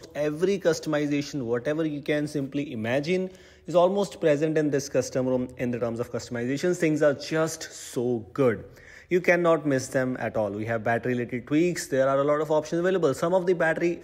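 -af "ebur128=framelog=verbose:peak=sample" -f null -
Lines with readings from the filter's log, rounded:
Integrated loudness:
  I:         -25.8 LUFS
  Threshold: -35.9 LUFS
Loudness range:
  LRA:         2.1 LU
  Threshold: -46.1 LUFS
  LRA low:   -27.2 LUFS
  LRA high:  -25.0 LUFS
Sample peak:
  Peak:       -8.6 dBFS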